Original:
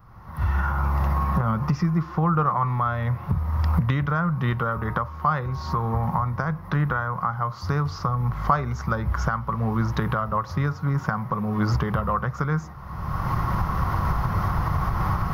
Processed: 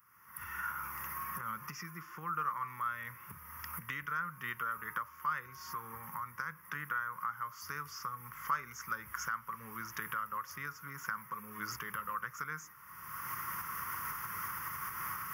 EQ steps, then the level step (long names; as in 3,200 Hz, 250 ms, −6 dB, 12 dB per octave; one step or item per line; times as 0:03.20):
first difference
low-shelf EQ 110 Hz −4 dB
phaser with its sweep stopped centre 1,700 Hz, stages 4
+6.5 dB